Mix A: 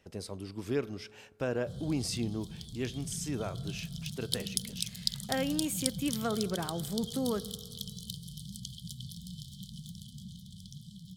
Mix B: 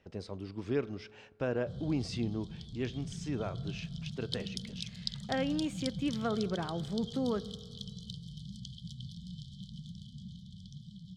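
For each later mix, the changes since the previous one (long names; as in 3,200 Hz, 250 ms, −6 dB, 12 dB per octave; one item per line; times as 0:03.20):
master: add high-frequency loss of the air 140 metres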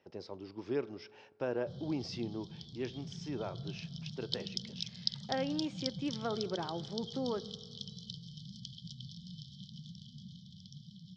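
speech −4.5 dB
master: add loudspeaker in its box 140–5,800 Hz, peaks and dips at 200 Hz −4 dB, 360 Hz +5 dB, 560 Hz +3 dB, 880 Hz +7 dB, 5,400 Hz +8 dB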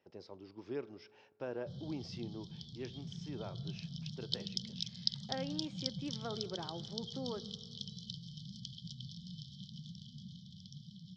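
speech −6.0 dB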